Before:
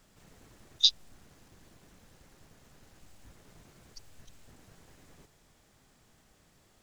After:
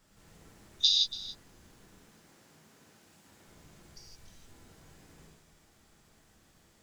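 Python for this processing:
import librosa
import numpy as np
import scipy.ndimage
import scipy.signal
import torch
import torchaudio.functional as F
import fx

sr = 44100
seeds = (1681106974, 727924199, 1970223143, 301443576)

p1 = fx.highpass(x, sr, hz=160.0, slope=12, at=(1.95, 3.46))
p2 = p1 + fx.echo_single(p1, sr, ms=283, db=-16.0, dry=0)
p3 = fx.rev_gated(p2, sr, seeds[0], gate_ms=190, shape='flat', drr_db=-4.5)
y = F.gain(torch.from_numpy(p3), -5.0).numpy()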